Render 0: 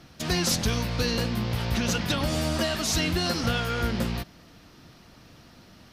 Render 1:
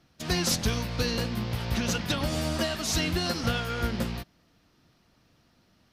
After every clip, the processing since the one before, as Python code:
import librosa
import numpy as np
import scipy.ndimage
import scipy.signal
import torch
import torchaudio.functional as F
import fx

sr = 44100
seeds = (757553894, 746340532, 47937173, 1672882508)

y = fx.upward_expand(x, sr, threshold_db=-47.0, expansion=1.5)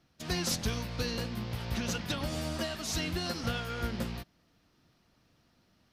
y = fx.rider(x, sr, range_db=10, speed_s=2.0)
y = F.gain(torch.from_numpy(y), -6.0).numpy()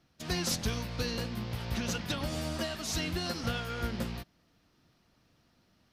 y = x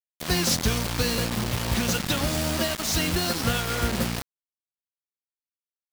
y = fx.quant_dither(x, sr, seeds[0], bits=6, dither='none')
y = F.gain(torch.from_numpy(y), 8.0).numpy()